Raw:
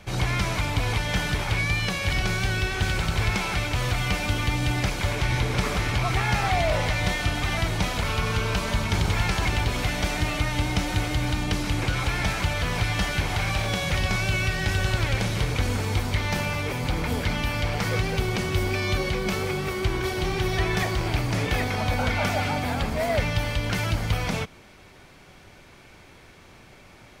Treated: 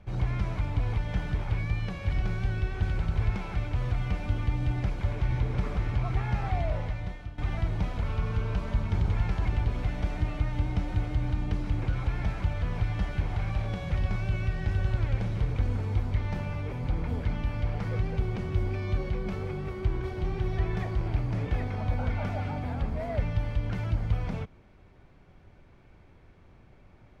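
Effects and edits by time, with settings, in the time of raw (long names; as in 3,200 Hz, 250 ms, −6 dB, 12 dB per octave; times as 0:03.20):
0:06.59–0:07.38: fade out, to −15.5 dB
whole clip: low-pass filter 1,100 Hz 6 dB per octave; low-shelf EQ 130 Hz +10 dB; level −8.5 dB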